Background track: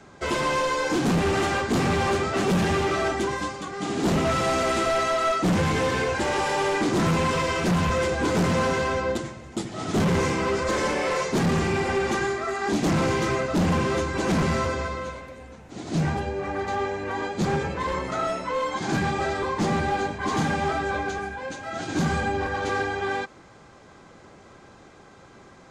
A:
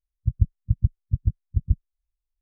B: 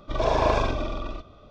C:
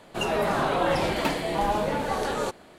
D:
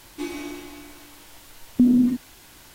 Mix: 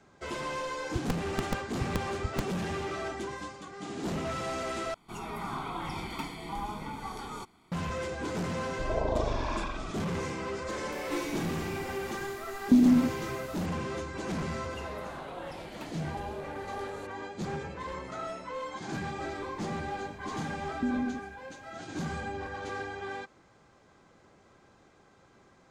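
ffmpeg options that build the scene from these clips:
ffmpeg -i bed.wav -i cue0.wav -i cue1.wav -i cue2.wav -i cue3.wav -filter_complex "[3:a]asplit=2[link_01][link_02];[4:a]asplit=2[link_03][link_04];[0:a]volume=-11dB[link_05];[1:a]aeval=exprs='(mod(2.99*val(0)+1,2)-1)/2.99':channel_layout=same[link_06];[link_01]aecho=1:1:0.9:0.85[link_07];[2:a]acrossover=split=880|3500[link_08][link_09][link_10];[link_10]adelay=270[link_11];[link_09]adelay=360[link_12];[link_08][link_12][link_11]amix=inputs=3:normalize=0[link_13];[link_04]lowpass=frequency=1700:poles=1[link_14];[link_05]asplit=2[link_15][link_16];[link_15]atrim=end=4.944[link_17];[link_07]atrim=end=2.78,asetpts=PTS-STARTPTS,volume=-13dB[link_18];[link_16]atrim=start=7.716[link_19];[link_06]atrim=end=2.41,asetpts=PTS-STARTPTS,volume=-11.5dB,afade=type=in:duration=0.004:curve=hsin,afade=type=out:start_time=2.406:duration=0.004:curve=hsin,adelay=680[link_20];[link_13]atrim=end=1.5,asetpts=PTS-STARTPTS,volume=-6dB,afade=type=in:duration=0.004:curve=hsin,afade=type=out:start_time=1.496:duration=0.004:curve=hsin,adelay=8700[link_21];[link_03]atrim=end=2.74,asetpts=PTS-STARTPTS,volume=-3.5dB,afade=type=in:duration=0.004:curve=hsin,afade=type=out:start_time=2.736:duration=0.004:curve=hsin,adelay=10920[link_22];[link_02]atrim=end=2.78,asetpts=PTS-STARTPTS,volume=-17dB,afade=type=in:duration=0.004:curve=hsin,afade=type=out:start_time=2.776:duration=0.004:curve=hsin,adelay=14560[link_23];[link_14]atrim=end=2.74,asetpts=PTS-STARTPTS,volume=-14dB,afade=type=in:duration=0.004:curve=hsin,afade=type=out:start_time=2.736:duration=0.004:curve=hsin,adelay=19030[link_24];[link_17][link_18]acrossfade=duration=0.004:curve1=hsin:curve2=hsin[link_25];[link_25][link_19]acrossfade=duration=0.004:curve1=hsin:curve2=hsin[link_26];[link_26][link_20][link_21][link_22][link_23][link_24]amix=inputs=6:normalize=0" out.wav

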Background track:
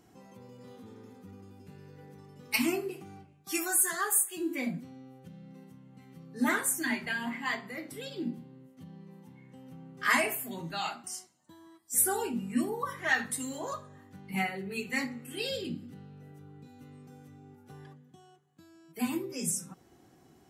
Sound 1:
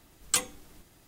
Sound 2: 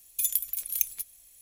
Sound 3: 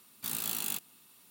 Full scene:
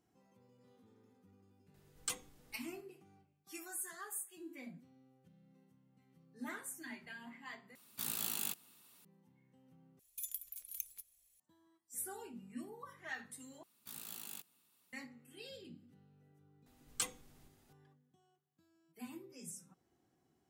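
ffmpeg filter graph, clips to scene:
ffmpeg -i bed.wav -i cue0.wav -i cue1.wav -i cue2.wav -filter_complex "[1:a]asplit=2[link_01][link_02];[3:a]asplit=2[link_03][link_04];[0:a]volume=-17dB[link_05];[link_04]acrusher=bits=4:mode=log:mix=0:aa=0.000001[link_06];[link_05]asplit=4[link_07][link_08][link_09][link_10];[link_07]atrim=end=7.754[link_11];[link_03]atrim=end=1.3,asetpts=PTS-STARTPTS,volume=-4.5dB[link_12];[link_08]atrim=start=9.046:end=9.994[link_13];[2:a]atrim=end=1.41,asetpts=PTS-STARTPTS,volume=-16.5dB[link_14];[link_09]atrim=start=11.396:end=13.634[link_15];[link_06]atrim=end=1.3,asetpts=PTS-STARTPTS,volume=-14dB[link_16];[link_10]atrim=start=14.926[link_17];[link_01]atrim=end=1.07,asetpts=PTS-STARTPTS,volume=-13.5dB,afade=type=in:duration=0.004:curve=hsin,afade=type=out:start_time=1.066:duration=0.004:curve=hsin,adelay=1740[link_18];[link_02]atrim=end=1.07,asetpts=PTS-STARTPTS,volume=-11.5dB,afade=type=in:duration=0.004:curve=hsin,afade=type=out:start_time=1.066:duration=0.004:curve=hsin,adelay=16660[link_19];[link_11][link_12]acrossfade=duration=0.004:curve1=hsin:curve2=hsin[link_20];[link_20][link_13]acrossfade=duration=0.004:curve1=hsin:curve2=hsin[link_21];[link_21][link_14]acrossfade=duration=0.004:curve1=hsin:curve2=hsin[link_22];[link_22][link_15]acrossfade=duration=0.004:curve1=hsin:curve2=hsin[link_23];[link_23][link_16]acrossfade=duration=0.004:curve1=hsin:curve2=hsin[link_24];[link_24][link_17]acrossfade=duration=0.004:curve1=hsin:curve2=hsin[link_25];[link_25][link_18][link_19]amix=inputs=3:normalize=0" out.wav

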